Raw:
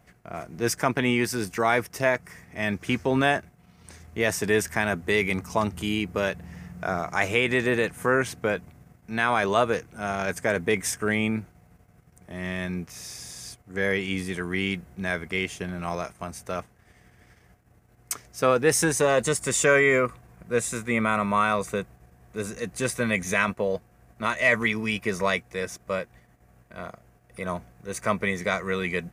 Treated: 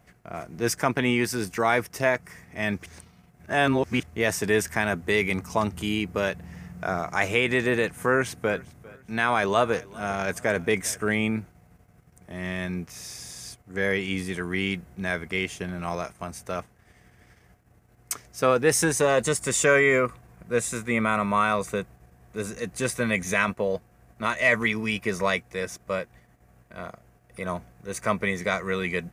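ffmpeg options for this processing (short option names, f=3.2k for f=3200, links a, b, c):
-filter_complex "[0:a]asettb=1/sr,asplit=3[a][b][c];[a]atrim=end=7.944[d];[b]atrim=start=7.94:end=11.07,asetpts=PTS-STARTPTS,afade=t=in:d=0.004:c=qsin,afade=t=out:st=3.126:d=0.004:c=qsin,aecho=1:1:400|800:0.0794|0.0254,atrim=end_sample=138033[e];[c]atrim=start=11.066[f];[d][e]acrossfade=d=0.004:c1=hsin:c2=qsin[g];[g][f]acrossfade=d=0.004:c1=qsin:c2=hsin,asplit=3[h][i][j];[h]atrim=end=2.862[k];[i]atrim=start=2.858:end=4.032,asetpts=PTS-STARTPTS,areverse[l];[j]atrim=start=4.028[m];[k][l]acrossfade=d=0.004:c1=hsin:c2=hsin[n];[n][m]acrossfade=d=0.004:c1=hsin:c2=hsin"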